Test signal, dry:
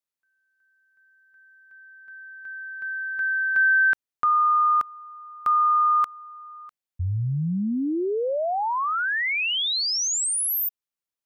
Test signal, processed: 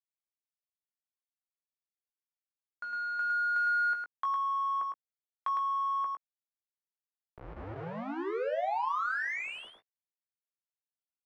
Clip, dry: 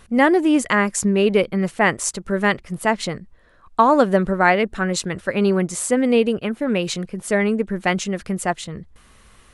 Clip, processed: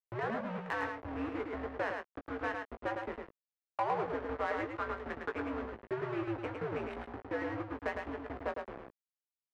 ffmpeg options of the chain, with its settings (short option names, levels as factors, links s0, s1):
-filter_complex "[0:a]bandreject=f=60:t=h:w=6,bandreject=f=120:t=h:w=6,bandreject=f=180:t=h:w=6,bandreject=f=240:t=h:w=6,agate=range=0.0224:threshold=0.0112:ratio=3:release=259:detection=peak,highpass=f=180:t=q:w=0.5412,highpass=f=180:t=q:w=1.307,lowpass=f=3300:t=q:w=0.5176,lowpass=f=3300:t=q:w=0.7071,lowpass=f=3300:t=q:w=1.932,afreqshift=-120,acompressor=threshold=0.0316:ratio=4:attack=23:release=131:knee=6:detection=rms,aeval=exprs='val(0)*gte(abs(val(0)),0.0282)':c=same,adynamicsmooth=sensitivity=2:basefreq=1300,asoftclip=type=tanh:threshold=0.0596,acrossover=split=370 2400:gain=0.224 1 0.251[s0][s1][s2];[s0][s1][s2]amix=inputs=3:normalize=0,asplit=2[s3][s4];[s4]adelay=18,volume=0.422[s5];[s3][s5]amix=inputs=2:normalize=0,asplit=2[s6][s7];[s7]aecho=0:1:107:0.596[s8];[s6][s8]amix=inputs=2:normalize=0"